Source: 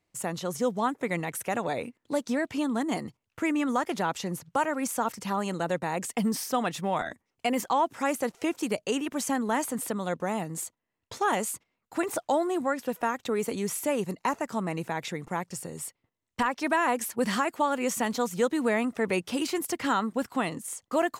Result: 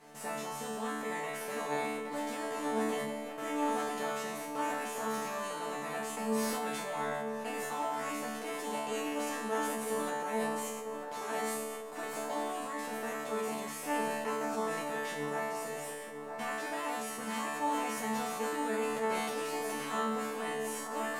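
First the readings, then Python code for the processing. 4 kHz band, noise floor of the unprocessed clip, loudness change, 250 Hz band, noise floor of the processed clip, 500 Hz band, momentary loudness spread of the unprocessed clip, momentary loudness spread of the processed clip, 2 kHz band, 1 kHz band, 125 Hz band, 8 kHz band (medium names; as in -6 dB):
-5.0 dB, -82 dBFS, -6.0 dB, -9.0 dB, -42 dBFS, -5.5 dB, 7 LU, 5 LU, -5.0 dB, -5.0 dB, -12.0 dB, -5.5 dB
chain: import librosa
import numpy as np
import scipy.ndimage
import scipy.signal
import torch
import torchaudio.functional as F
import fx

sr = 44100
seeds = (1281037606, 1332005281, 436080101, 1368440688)

p1 = fx.bin_compress(x, sr, power=0.4)
p2 = fx.resonator_bank(p1, sr, root=50, chord='fifth', decay_s=0.84)
p3 = p2 + fx.echo_banded(p2, sr, ms=951, feedback_pct=49, hz=610.0, wet_db=-5, dry=0)
p4 = fx.sustainer(p3, sr, db_per_s=24.0)
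y = p4 * librosa.db_to_amplitude(2.5)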